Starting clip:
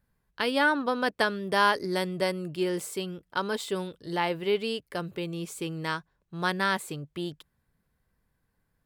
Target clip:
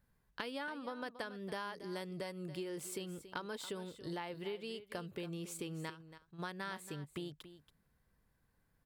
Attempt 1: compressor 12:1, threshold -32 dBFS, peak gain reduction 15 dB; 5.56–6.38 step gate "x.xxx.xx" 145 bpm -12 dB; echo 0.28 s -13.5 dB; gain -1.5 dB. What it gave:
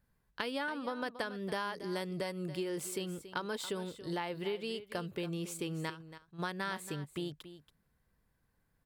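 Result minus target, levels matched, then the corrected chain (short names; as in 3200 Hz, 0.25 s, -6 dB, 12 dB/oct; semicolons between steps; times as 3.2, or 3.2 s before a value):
compressor: peak gain reduction -5.5 dB
compressor 12:1, threshold -38 dBFS, peak gain reduction 20.5 dB; 5.56–6.38 step gate "x.xxx.xx" 145 bpm -12 dB; echo 0.28 s -13.5 dB; gain -1.5 dB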